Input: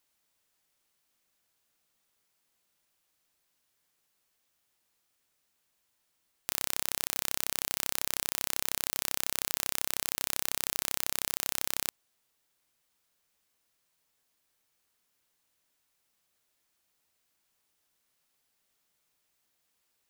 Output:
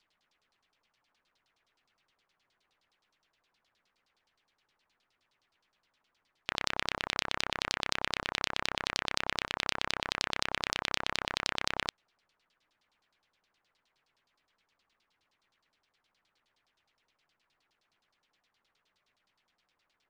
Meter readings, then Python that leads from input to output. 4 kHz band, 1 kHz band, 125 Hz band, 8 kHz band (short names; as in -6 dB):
+3.0 dB, +6.0 dB, +2.5 dB, -10.5 dB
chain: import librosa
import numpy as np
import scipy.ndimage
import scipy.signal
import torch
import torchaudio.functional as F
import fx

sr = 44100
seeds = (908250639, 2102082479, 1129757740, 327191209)

y = fx.quant_dither(x, sr, seeds[0], bits=12, dither='none')
y = fx.filter_lfo_lowpass(y, sr, shape='saw_down', hz=9.6, low_hz=820.0, high_hz=5100.0, q=2.4)
y = F.gain(torch.from_numpy(y), 2.5).numpy()